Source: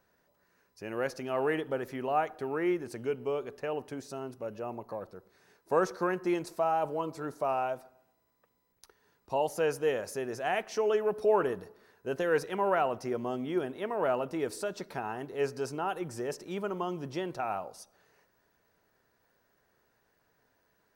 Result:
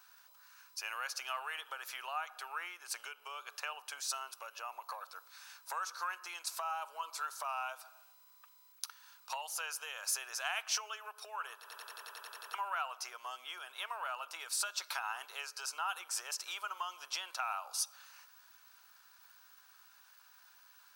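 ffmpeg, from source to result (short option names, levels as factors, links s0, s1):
-filter_complex "[0:a]asplit=12[s0][s1][s2][s3][s4][s5][s6][s7][s8][s9][s10][s11];[s0]atrim=end=11.642[s12];[s1]atrim=start=11.548:end=11.642[s13];[s2]atrim=start=11.548:end=11.642[s14];[s3]atrim=start=11.548:end=11.642[s15];[s4]atrim=start=11.548:end=11.642[s16];[s5]atrim=start=11.548:end=11.642[s17];[s6]atrim=start=11.548:end=11.642[s18];[s7]atrim=start=11.548:end=11.642[s19];[s8]atrim=start=11.548:end=11.642[s20];[s9]atrim=start=11.548:end=11.642[s21];[s10]atrim=start=11.548:end=11.642[s22];[s11]atrim=start=12.538[s23];[s12][s13]acrossfade=d=0.004:c1=hsin:c2=hsin[s24];[s24][s14]acrossfade=d=0.004:c1=hsin:c2=hsin[s25];[s25][s15]acrossfade=d=0.004:c1=hsin:c2=hsin[s26];[s26][s16]acrossfade=d=0.004:c1=hsin:c2=hsin[s27];[s27][s17]acrossfade=d=0.004:c1=hsin:c2=hsin[s28];[s28][s18]acrossfade=d=0.004:c1=hsin:c2=hsin[s29];[s29][s19]acrossfade=d=0.004:c1=hsin:c2=hsin[s30];[s30][s20]acrossfade=d=0.004:c1=hsin:c2=hsin[s31];[s31][s21]acrossfade=d=0.004:c1=hsin:c2=hsin[s32];[s32][s22]acrossfade=d=0.004:c1=hsin:c2=hsin[s33];[s33][s23]acrossfade=d=0.004:c1=hsin:c2=hsin,equalizer=f=1900:t=o:w=0.39:g=-13,acompressor=threshold=0.00891:ratio=6,highpass=f=1200:w=0.5412,highpass=f=1200:w=1.3066,volume=6.31"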